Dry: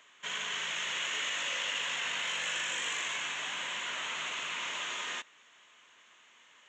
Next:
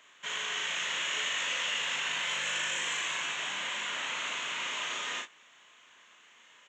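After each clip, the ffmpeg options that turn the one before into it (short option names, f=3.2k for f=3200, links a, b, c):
-af "aecho=1:1:35|54:0.668|0.251"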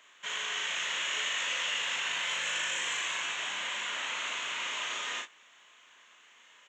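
-af "equalizer=f=120:w=0.46:g=-5.5"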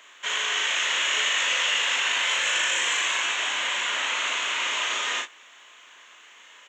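-af "highpass=f=240:w=0.5412,highpass=f=240:w=1.3066,volume=8.5dB"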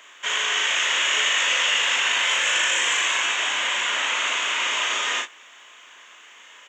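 -af "bandreject=f=4.1k:w=11,volume=3dB"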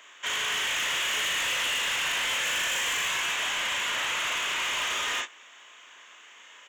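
-af "volume=22dB,asoftclip=hard,volume=-22dB,volume=-3.5dB"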